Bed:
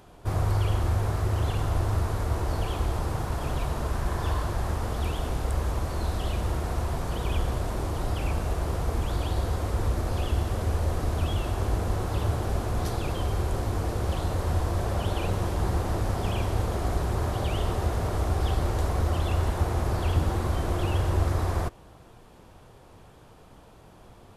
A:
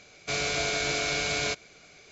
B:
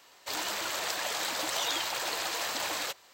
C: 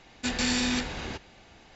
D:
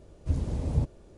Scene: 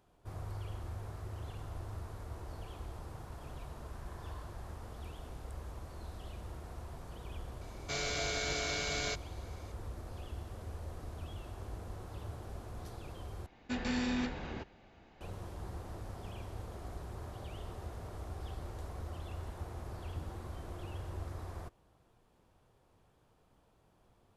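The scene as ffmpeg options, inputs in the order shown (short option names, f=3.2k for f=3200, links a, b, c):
-filter_complex "[0:a]volume=-17.5dB[a];[1:a]bandreject=f=2.5k:w=7.9[b];[3:a]lowpass=f=1.3k:p=1[c];[a]asplit=2[d][e];[d]atrim=end=13.464[f];[c]atrim=end=1.75,asetpts=PTS-STARTPTS,volume=-4.5dB[g];[e]atrim=start=15.206[h];[b]atrim=end=2.11,asetpts=PTS-STARTPTS,volume=-7dB,afade=t=in:d=0.004:c=hsin,afade=t=out:st=2.106:d=0.004:c=hsin,adelay=7610[i];[f][g]acrossfade=d=0.004:c1=hsin:c2=hsin[j];[j][h]acrossfade=d=0.004:c1=hsin:c2=hsin[k];[k][i]amix=inputs=2:normalize=0"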